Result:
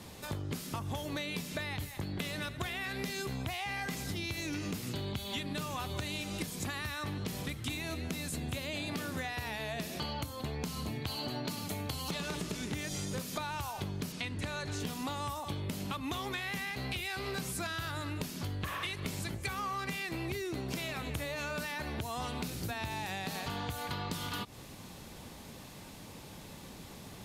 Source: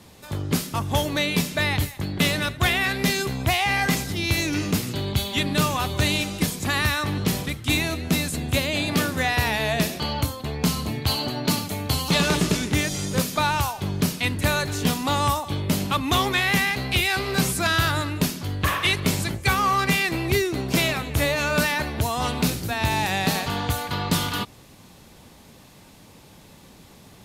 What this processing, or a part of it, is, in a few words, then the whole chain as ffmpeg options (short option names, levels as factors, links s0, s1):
serial compression, peaks first: -filter_complex "[0:a]asettb=1/sr,asplit=3[s0][s1][s2];[s0]atrim=end=14.124[s3];[s1]atrim=start=14.12:end=14.8,asetpts=PTS-STARTPTS,afade=t=in:d=0.004:c=qsin,afade=t=out:st=0.676:d=0.004:c=qsin,lowpass=7900[s4];[s2]atrim=start=14.796[s5];[s3][s4]acrossfade=d=0.004:c1=hsin:c2=qsin[s6];[s6][s5]acrossfade=d=0.004:c1=qsin:c2=hsin,acompressor=threshold=0.0398:ratio=6,acompressor=threshold=0.0158:ratio=3"